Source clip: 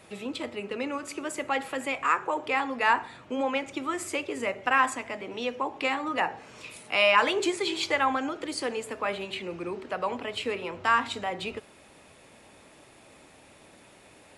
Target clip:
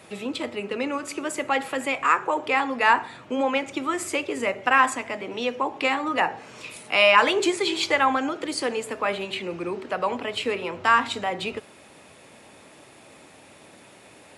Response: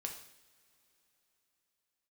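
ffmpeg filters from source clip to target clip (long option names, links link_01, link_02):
-af "highpass=89,volume=4.5dB"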